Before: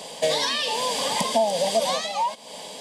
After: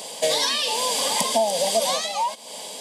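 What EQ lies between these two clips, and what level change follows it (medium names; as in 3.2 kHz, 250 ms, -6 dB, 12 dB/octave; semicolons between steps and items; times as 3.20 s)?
high-pass 190 Hz 12 dB/octave; treble shelf 6.8 kHz +10.5 dB; band-stop 1.8 kHz, Q 27; 0.0 dB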